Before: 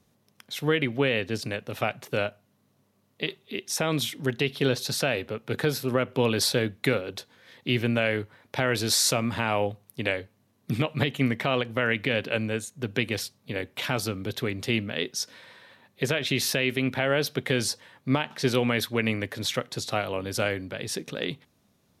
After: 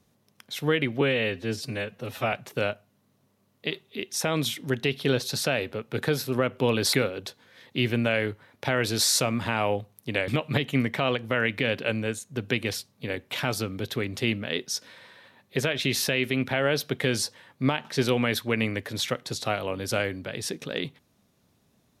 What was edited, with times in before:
0:01.01–0:01.89: time-stretch 1.5×
0:06.49–0:06.84: remove
0:10.19–0:10.74: remove

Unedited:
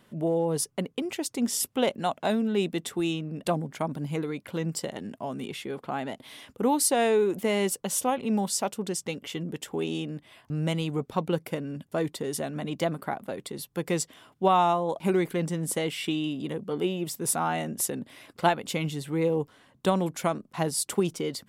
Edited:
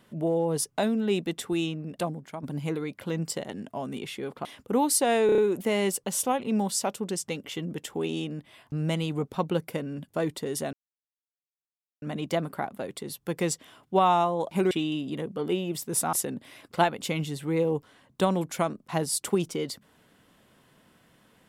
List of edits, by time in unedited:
0:00.78–0:02.25: remove
0:03.18–0:03.90: fade out, to −10 dB
0:05.92–0:06.35: remove
0:07.16: stutter 0.03 s, 5 plays
0:12.51: splice in silence 1.29 s
0:15.20–0:16.03: remove
0:17.45–0:17.78: remove

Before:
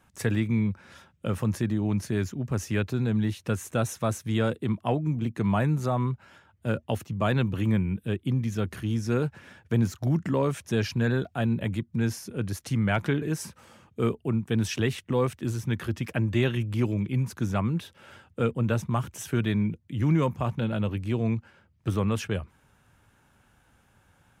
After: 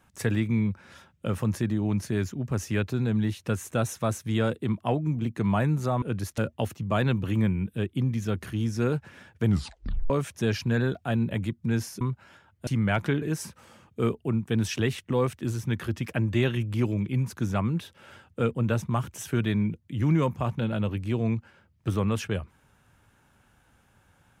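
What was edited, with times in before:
0:06.02–0:06.68: swap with 0:12.31–0:12.67
0:09.74: tape stop 0.66 s

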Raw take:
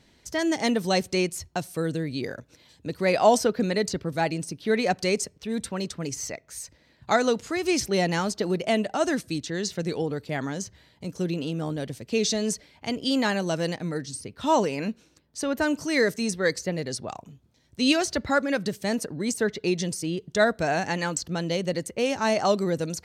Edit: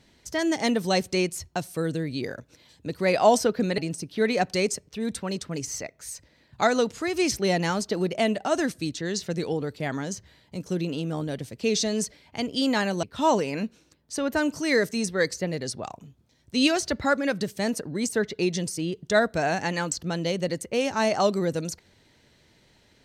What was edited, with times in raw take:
0:03.78–0:04.27: remove
0:13.52–0:14.28: remove

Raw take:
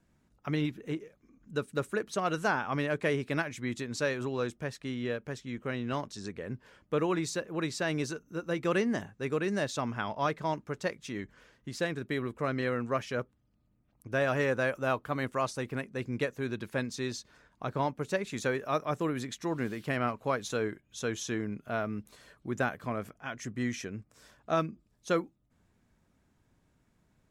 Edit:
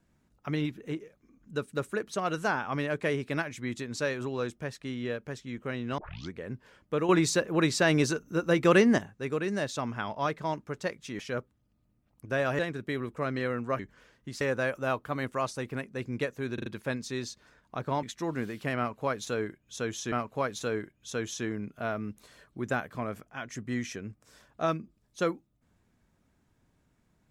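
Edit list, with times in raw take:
0:05.98: tape start 0.34 s
0:07.09–0:08.98: clip gain +7.5 dB
0:11.19–0:11.81: swap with 0:13.01–0:14.41
0:16.54: stutter 0.04 s, 4 plays
0:17.91–0:19.26: remove
0:20.01–0:21.35: repeat, 2 plays

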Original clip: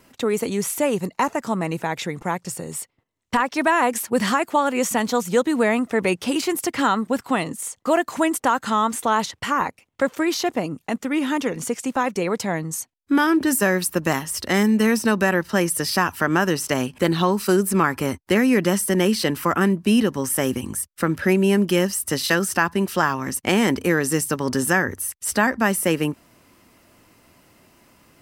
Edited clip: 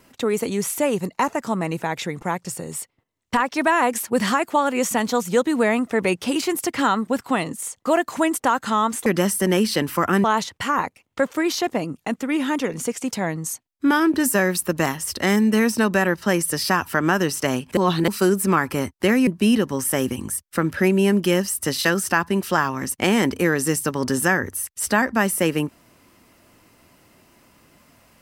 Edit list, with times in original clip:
0:11.93–0:12.38: remove
0:17.04–0:17.35: reverse
0:18.54–0:19.72: move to 0:09.06

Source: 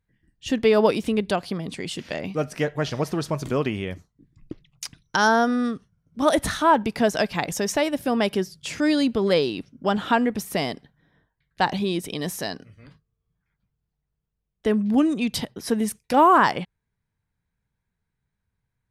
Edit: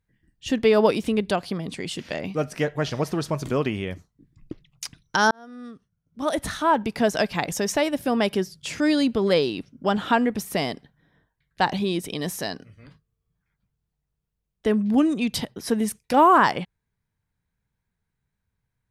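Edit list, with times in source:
0:05.31–0:07.17: fade in

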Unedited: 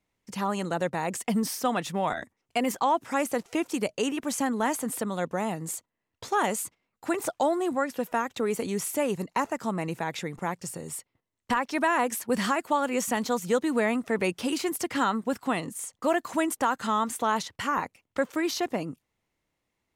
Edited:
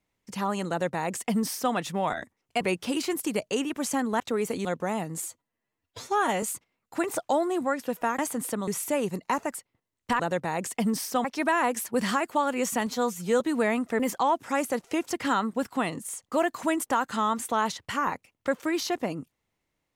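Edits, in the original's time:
0:00.69–0:01.74: duplicate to 0:11.60
0:02.61–0:03.72: swap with 0:14.17–0:14.81
0:04.67–0:05.16: swap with 0:08.29–0:08.74
0:05.72–0:06.53: time-stretch 1.5×
0:09.61–0:10.95: remove
0:13.22–0:13.58: time-stretch 1.5×

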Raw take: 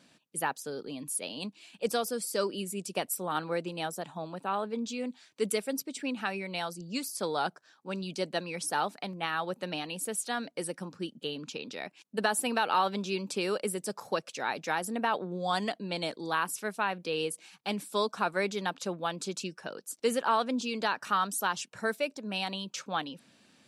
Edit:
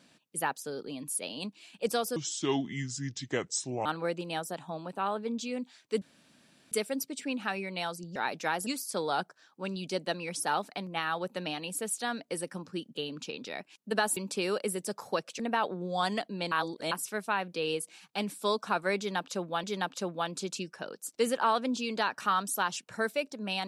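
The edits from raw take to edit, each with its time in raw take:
0:02.16–0:03.33: play speed 69%
0:05.49: splice in room tone 0.70 s
0:12.43–0:13.16: remove
0:14.39–0:14.90: move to 0:06.93
0:16.02–0:16.42: reverse
0:18.48–0:19.14: repeat, 2 plays

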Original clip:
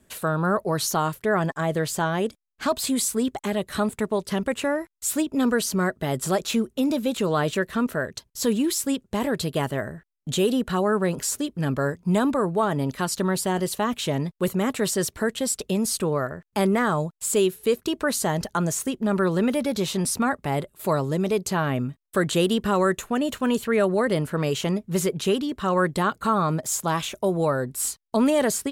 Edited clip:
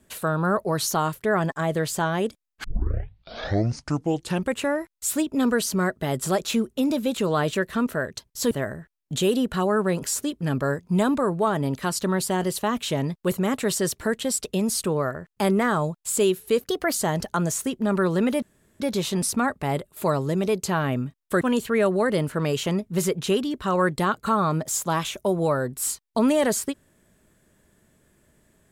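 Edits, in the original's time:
0:02.64: tape start 1.88 s
0:08.51–0:09.67: remove
0:17.78–0:18.15: play speed 115%
0:19.63: splice in room tone 0.38 s
0:22.24–0:23.39: remove

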